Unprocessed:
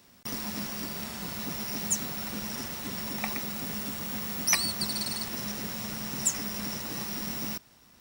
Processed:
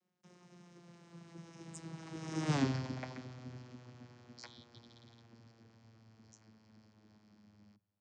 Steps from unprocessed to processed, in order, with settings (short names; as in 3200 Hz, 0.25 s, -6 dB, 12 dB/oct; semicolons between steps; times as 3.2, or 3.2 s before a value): vocoder on a gliding note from E3, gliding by -7 st; Doppler pass-by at 2.56, 31 m/s, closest 1.9 m; notches 60/120/180 Hz; gain +9.5 dB